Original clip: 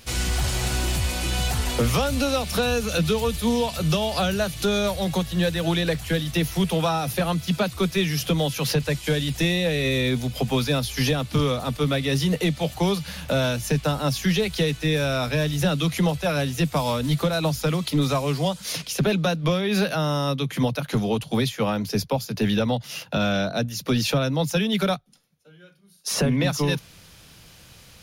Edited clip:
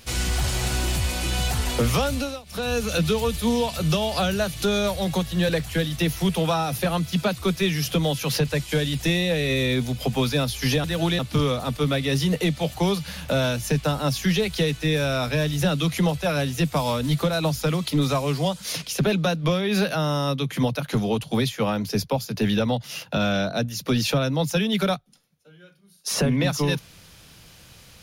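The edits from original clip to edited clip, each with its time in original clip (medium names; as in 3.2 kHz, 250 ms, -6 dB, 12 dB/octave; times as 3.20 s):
2.08–2.79 s: dip -19.5 dB, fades 0.34 s
5.49–5.84 s: move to 11.19 s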